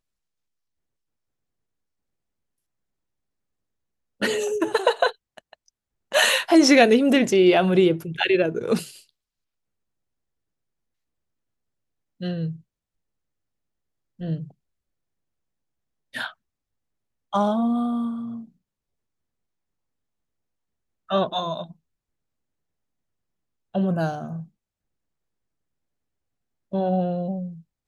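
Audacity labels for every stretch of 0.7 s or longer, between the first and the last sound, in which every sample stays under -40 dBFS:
8.990000	12.210000	silence
12.560000	14.200000	silence
14.510000	16.140000	silence
16.320000	17.330000	silence
18.450000	21.090000	silence
21.720000	23.750000	silence
24.440000	26.720000	silence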